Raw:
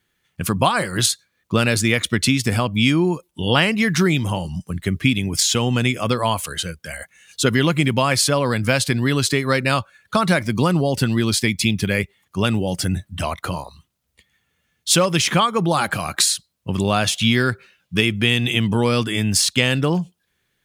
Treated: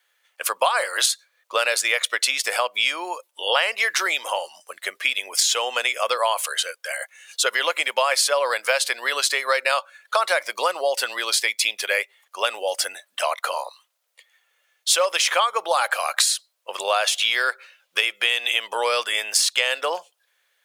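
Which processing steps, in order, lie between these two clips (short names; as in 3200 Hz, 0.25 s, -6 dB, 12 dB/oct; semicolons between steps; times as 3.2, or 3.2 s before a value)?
elliptic high-pass 530 Hz, stop band 80 dB; compressor 2.5:1, threshold -22 dBFS, peak gain reduction 7 dB; gain +4 dB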